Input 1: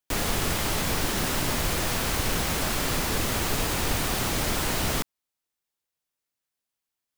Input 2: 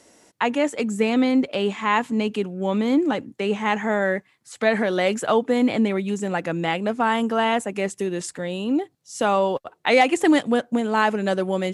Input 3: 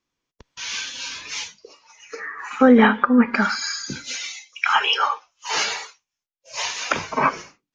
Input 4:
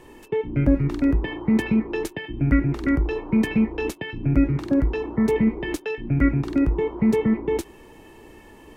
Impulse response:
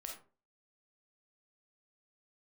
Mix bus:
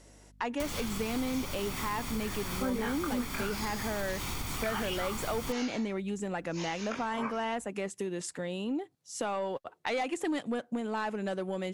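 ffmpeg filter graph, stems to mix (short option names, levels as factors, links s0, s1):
-filter_complex "[0:a]aecho=1:1:0.9:0.51,adelay=500,volume=0.891[s0];[1:a]asoftclip=type=tanh:threshold=0.237,volume=0.562[s1];[2:a]flanger=delay=19.5:depth=5:speed=1.1,volume=0.355[s2];[s0]aeval=exprs='val(0)+0.00141*(sin(2*PI*50*n/s)+sin(2*PI*2*50*n/s)/2+sin(2*PI*3*50*n/s)/3+sin(2*PI*4*50*n/s)/4+sin(2*PI*5*50*n/s)/5)':c=same,acompressor=threshold=0.0355:ratio=6,volume=1[s3];[s1][s2][s3]amix=inputs=3:normalize=0,acompressor=threshold=0.0224:ratio=2.5"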